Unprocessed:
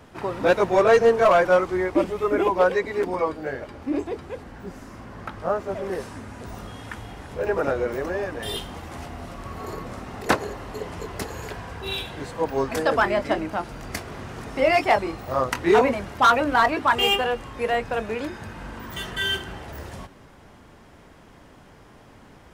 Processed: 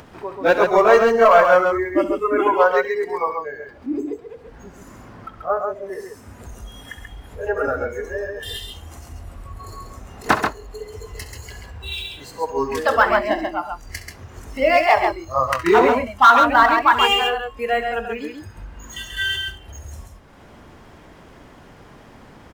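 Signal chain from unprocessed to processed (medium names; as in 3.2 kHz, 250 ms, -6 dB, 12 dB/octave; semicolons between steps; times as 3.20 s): spectral noise reduction 15 dB; dynamic bell 1.2 kHz, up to +5 dB, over -32 dBFS, Q 1.2; upward compressor, threshold -32 dBFS; on a send: multi-tap echo 66/74/135 ms -13.5/-19/-5 dB; on the sum: decimation joined by straight lines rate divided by 2×; trim +1.5 dB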